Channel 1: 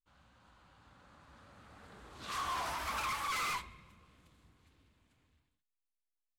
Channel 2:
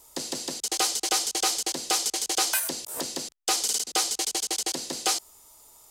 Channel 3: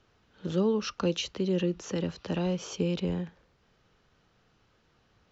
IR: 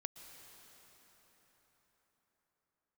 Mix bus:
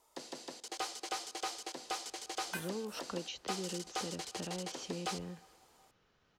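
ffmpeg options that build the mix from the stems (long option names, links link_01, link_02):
-filter_complex "[1:a]asplit=2[link_01][link_02];[link_02]highpass=frequency=720:poles=1,volume=7dB,asoftclip=type=tanh:threshold=-11.5dB[link_03];[link_01][link_03]amix=inputs=2:normalize=0,lowpass=frequency=1300:poles=1,volume=-6dB,volume=-10.5dB,asplit=2[link_04][link_05];[link_05]volume=-7dB[link_06];[2:a]acompressor=threshold=-38dB:ratio=2,adelay=2100,volume=-4.5dB[link_07];[3:a]atrim=start_sample=2205[link_08];[link_06][link_08]afir=irnorm=-1:irlink=0[link_09];[link_04][link_07][link_09]amix=inputs=3:normalize=0,lowshelf=frequency=180:gain=-5.5"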